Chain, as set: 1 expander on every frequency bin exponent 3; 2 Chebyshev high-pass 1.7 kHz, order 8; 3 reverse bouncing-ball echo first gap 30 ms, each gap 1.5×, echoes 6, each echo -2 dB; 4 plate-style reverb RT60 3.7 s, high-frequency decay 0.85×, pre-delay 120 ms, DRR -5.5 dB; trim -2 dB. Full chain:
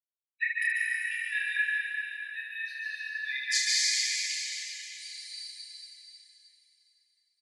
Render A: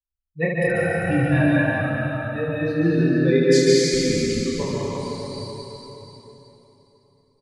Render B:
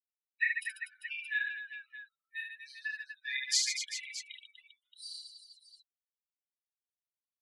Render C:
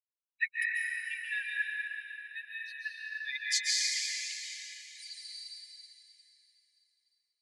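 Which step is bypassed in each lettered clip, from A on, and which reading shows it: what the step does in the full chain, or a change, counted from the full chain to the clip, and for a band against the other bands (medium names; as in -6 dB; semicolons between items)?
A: 2, crest factor change -3.0 dB; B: 4, echo-to-direct 10.5 dB to 2.0 dB; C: 3, echo-to-direct 10.5 dB to 5.5 dB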